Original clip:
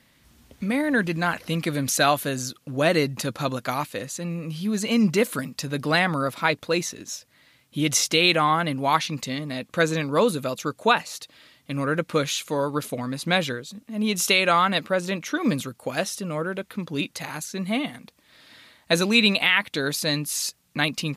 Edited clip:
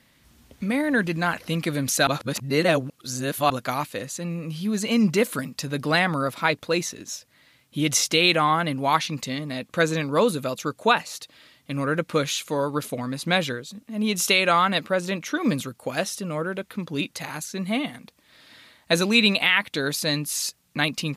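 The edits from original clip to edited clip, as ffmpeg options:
-filter_complex "[0:a]asplit=3[s0][s1][s2];[s0]atrim=end=2.072[s3];[s1]atrim=start=2.068:end=3.502,asetpts=PTS-STARTPTS,areverse[s4];[s2]atrim=start=3.498[s5];[s3][s4]acrossfade=d=0.004:c1=hsin:c2=hsin[s6];[s6][s5]acrossfade=d=0.004:c1=hsin:c2=hsin"

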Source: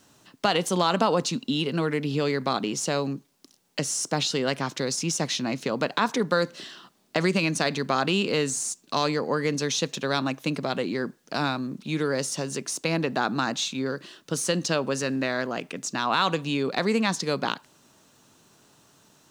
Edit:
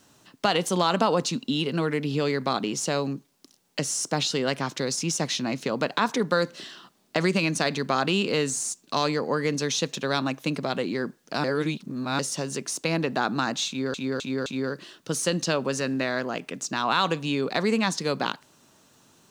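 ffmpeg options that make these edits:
-filter_complex "[0:a]asplit=6[s0][s1][s2][s3][s4][s5];[s0]atrim=end=11.442[s6];[s1]atrim=start=11.438:end=12.192,asetpts=PTS-STARTPTS,areverse[s7];[s2]atrim=start=12.188:end=13.942[s8];[s3]atrim=start=13.678:end=13.942[s9];[s4]atrim=start=13.678:end=13.942[s10];[s5]atrim=start=13.678[s11];[s6][s7]acrossfade=d=0.004:c1=hsin:c2=hsin[s12];[s12][s8]acrossfade=d=0.004:c1=hsin:c2=hsin[s13];[s13][s9]acrossfade=d=0.004:c1=hsin:c2=hsin[s14];[s14][s10]acrossfade=d=0.004:c1=hsin:c2=hsin[s15];[s15][s11]acrossfade=d=0.004:c1=hsin:c2=hsin"

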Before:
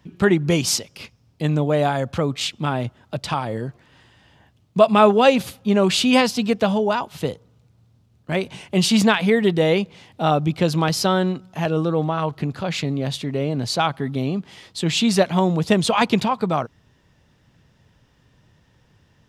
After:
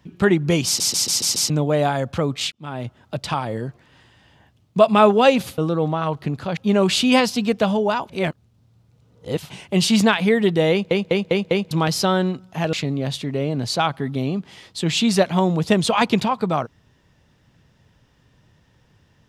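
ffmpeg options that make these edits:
-filter_complex "[0:a]asplit=18[s0][s1][s2][s3][s4][s5][s6][s7][s8][s9][s10][s11][s12][s13][s14][s15][s16][s17];[s0]atrim=end=0.802[s18];[s1]atrim=start=0.658:end=0.802[s19];[s2]atrim=start=0.658:end=0.802[s20];[s3]atrim=start=0.658:end=0.802[s21];[s4]atrim=start=0.658:end=0.802[s22];[s5]atrim=start=0.658:end=0.802[s23];[s6]atrim=start=1.498:end=2.52,asetpts=PTS-STARTPTS,afade=t=out:st=1.018:d=0.004:c=hsin[s24];[s7]atrim=start=2.52:end=5.582,asetpts=PTS-STARTPTS,afade=t=in:d=0.48[s25];[s8]atrim=start=11.738:end=12.732[s26];[s9]atrim=start=5.578:end=7.102[s27];[s10]atrim=start=7.098:end=8.512,asetpts=PTS-STARTPTS,areverse[s28];[s11]atrim=start=8.508:end=9.922[s29];[s12]atrim=start=9.718:end=9.922[s30];[s13]atrim=start=9.718:end=9.922[s31];[s14]atrim=start=9.718:end=9.922[s32];[s15]atrim=start=9.718:end=9.922[s33];[s16]atrim=start=10.718:end=11.742[s34];[s17]atrim=start=12.728[s35];[s18][s19]acrossfade=d=0.004:c1=hsin:c2=hsin[s36];[s36][s20]acrossfade=d=0.004:c1=hsin:c2=hsin[s37];[s37][s21]acrossfade=d=0.004:c1=hsin:c2=hsin[s38];[s38][s22]acrossfade=d=0.004:c1=hsin:c2=hsin[s39];[s39][s23]acrossfade=d=0.004:c1=hsin:c2=hsin[s40];[s24][s25]concat=n=2:v=0:a=1[s41];[s40][s41]acrossfade=d=0.004:c1=hsin:c2=hsin[s42];[s42][s26]acrossfade=d=0.004:c1=hsin:c2=hsin[s43];[s43][s27]acrossfade=d=0.004:c1=hsin:c2=hsin[s44];[s44][s28]acrossfade=d=0.004:c1=hsin:c2=hsin[s45];[s45][s29]acrossfade=d=0.004:c1=hsin:c2=hsin[s46];[s46][s30]acrossfade=d=0.004:c1=hsin:c2=hsin[s47];[s47][s31]acrossfade=d=0.004:c1=hsin:c2=hsin[s48];[s48][s32]acrossfade=d=0.004:c1=hsin:c2=hsin[s49];[s49][s33]acrossfade=d=0.004:c1=hsin:c2=hsin[s50];[s50][s34]acrossfade=d=0.004:c1=hsin:c2=hsin[s51];[s51][s35]acrossfade=d=0.004:c1=hsin:c2=hsin"

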